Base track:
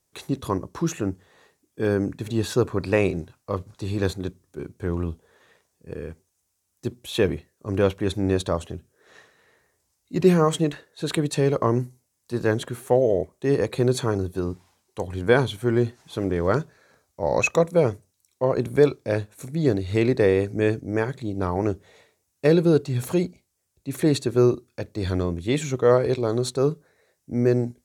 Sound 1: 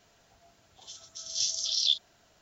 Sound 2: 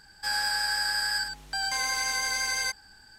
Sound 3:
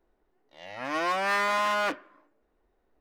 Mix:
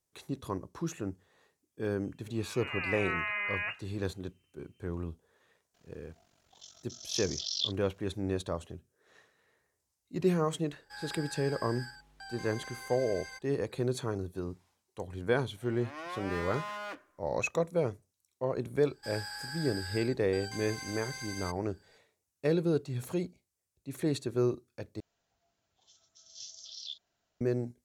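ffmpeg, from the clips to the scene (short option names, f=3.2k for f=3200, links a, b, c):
-filter_complex "[3:a]asplit=2[a][b];[1:a]asplit=2[c][d];[2:a]asplit=2[e][f];[0:a]volume=-10.5dB[g];[a]lowpass=f=2.6k:t=q:w=0.5098,lowpass=f=2.6k:t=q:w=0.6013,lowpass=f=2.6k:t=q:w=0.9,lowpass=f=2.6k:t=q:w=2.563,afreqshift=-3100[h];[c]aeval=exprs='val(0)*sin(2*PI*23*n/s)':c=same[i];[e]highshelf=f=3.4k:g=-9[j];[g]asplit=2[k][l];[k]atrim=end=25.004[m];[d]atrim=end=2.41,asetpts=PTS-STARTPTS,volume=-17dB[n];[l]atrim=start=27.406[o];[h]atrim=end=3,asetpts=PTS-STARTPTS,volume=-8dB,afade=t=in:d=0.004:c=hsin,afade=t=out:st=2.996:d=0.004:c=hsin,adelay=1800[p];[i]atrim=end=2.41,asetpts=PTS-STARTPTS,volume=-4dB,afade=t=in:d=0.004:c=hsin,afade=t=out:st=2.406:d=0.004:c=hsin,adelay=5740[q];[j]atrim=end=3.18,asetpts=PTS-STARTPTS,volume=-14dB,afade=t=in:d=0.004:c=hsin,afade=t=out:st=3.176:d=0.004:c=hsin,adelay=10670[r];[b]atrim=end=3,asetpts=PTS-STARTPTS,volume=-13.5dB,afade=t=in:d=0.004:c=hsin,afade=t=out:st=2.996:d=0.004:c=hsin,adelay=15030[s];[f]atrim=end=3.18,asetpts=PTS-STARTPTS,volume=-14dB,afade=t=in:d=0.004:c=hsin,afade=t=out:st=3.176:d=0.004:c=hsin,adelay=18800[t];[m][n]acrossfade=d=0.004:c1=hsin:c2=hsin[u];[u][o]acrossfade=d=0.004:c1=hsin:c2=hsin[v];[v][p][q][r][s][t]amix=inputs=6:normalize=0"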